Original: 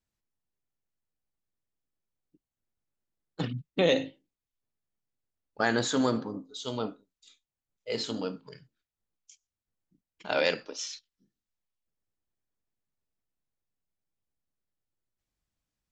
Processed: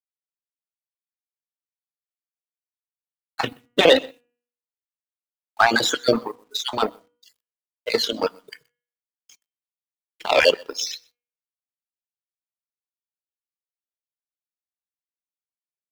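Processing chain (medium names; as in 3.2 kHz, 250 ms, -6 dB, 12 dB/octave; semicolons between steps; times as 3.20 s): random holes in the spectrogram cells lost 39%; 8.01–10.50 s: bass shelf 140 Hz -10 dB; delay 125 ms -14 dB; in parallel at +1 dB: compression 4:1, threshold -42 dBFS, peak gain reduction 18 dB; on the sum: three-band isolator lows -15 dB, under 370 Hz, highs -13 dB, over 6.1 kHz; bit crusher 10-bit; on a send at -9.5 dB: Butterworth band-stop 1.9 kHz, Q 1.7 + reverberation RT60 0.35 s, pre-delay 4 ms; on the sum: power-law waveshaper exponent 1.4; de-hum 241.1 Hz, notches 13; reverb removal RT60 0.92 s; loudness maximiser +20 dB; trim -1 dB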